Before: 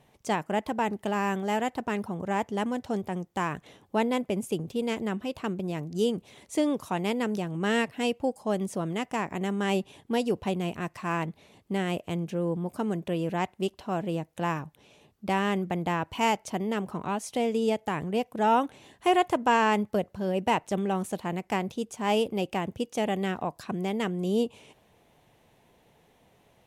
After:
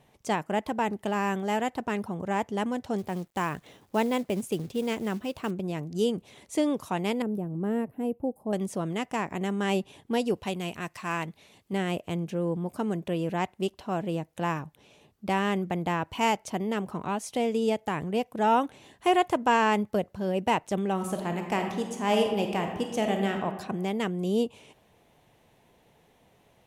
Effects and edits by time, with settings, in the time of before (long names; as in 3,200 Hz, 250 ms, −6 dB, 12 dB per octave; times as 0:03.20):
0:02.98–0:05.51: log-companded quantiser 6 bits
0:07.22–0:08.53: drawn EQ curve 310 Hz 0 dB, 740 Hz −6 dB, 2,700 Hz −22 dB, 4,300 Hz −27 dB, 6,600 Hz −25 dB, 12,000 Hz −2 dB
0:10.34–0:11.73: tilt shelving filter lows −4 dB, about 1,400 Hz
0:20.93–0:23.45: thrown reverb, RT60 1.2 s, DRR 3.5 dB